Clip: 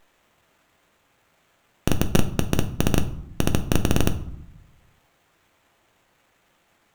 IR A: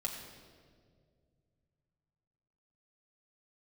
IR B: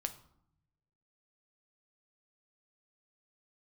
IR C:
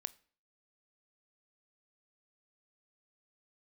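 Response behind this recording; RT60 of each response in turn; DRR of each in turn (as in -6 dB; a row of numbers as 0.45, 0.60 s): B; 2.0, 0.70, 0.45 s; -1.0, 7.0, 16.0 dB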